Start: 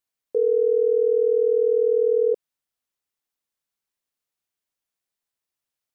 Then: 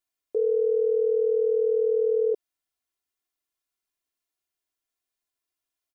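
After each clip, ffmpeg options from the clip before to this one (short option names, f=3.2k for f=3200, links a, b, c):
-af "aecho=1:1:2.9:0.71,volume=-3dB"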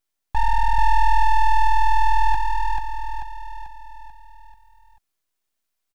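-af "aecho=1:1:439|878|1317|1756|2195|2634:0.631|0.309|0.151|0.0742|0.0364|0.0178,aeval=exprs='abs(val(0))':c=same,volume=7.5dB"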